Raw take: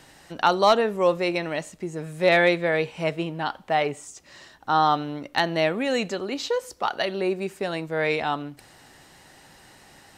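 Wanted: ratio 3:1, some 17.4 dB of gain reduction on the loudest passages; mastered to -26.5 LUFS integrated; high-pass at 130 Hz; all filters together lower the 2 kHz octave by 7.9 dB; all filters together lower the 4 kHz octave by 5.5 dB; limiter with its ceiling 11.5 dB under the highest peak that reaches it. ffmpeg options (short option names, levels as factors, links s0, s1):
-af "highpass=130,equalizer=f=2000:t=o:g=-9,equalizer=f=4000:t=o:g=-3.5,acompressor=threshold=0.01:ratio=3,volume=7.94,alimiter=limit=0.158:level=0:latency=1"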